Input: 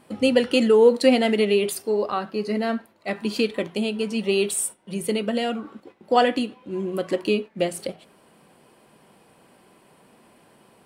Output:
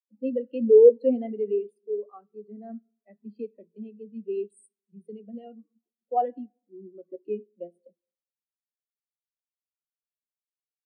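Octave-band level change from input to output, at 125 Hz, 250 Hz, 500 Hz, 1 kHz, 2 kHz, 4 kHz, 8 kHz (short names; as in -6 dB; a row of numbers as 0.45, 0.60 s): under -15 dB, -10.0 dB, -2.5 dB, -7.0 dB, under -30 dB, under -35 dB, under -30 dB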